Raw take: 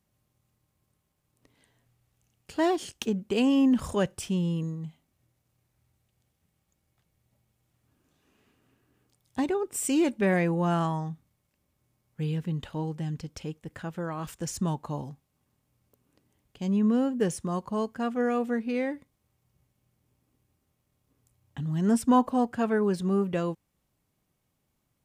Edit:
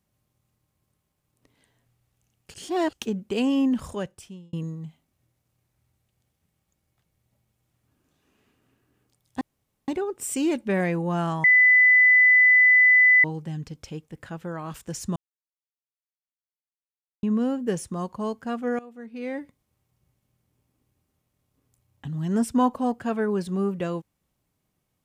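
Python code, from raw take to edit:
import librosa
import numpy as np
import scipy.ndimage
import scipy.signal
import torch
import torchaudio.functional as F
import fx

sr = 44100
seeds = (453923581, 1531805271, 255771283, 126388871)

y = fx.edit(x, sr, fx.reverse_span(start_s=2.54, length_s=0.39),
    fx.fade_out_span(start_s=3.61, length_s=0.92),
    fx.insert_room_tone(at_s=9.41, length_s=0.47),
    fx.bleep(start_s=10.97, length_s=1.8, hz=2000.0, db=-12.5),
    fx.silence(start_s=14.69, length_s=2.07),
    fx.fade_in_from(start_s=18.32, length_s=0.6, curve='qua', floor_db=-18.0), tone=tone)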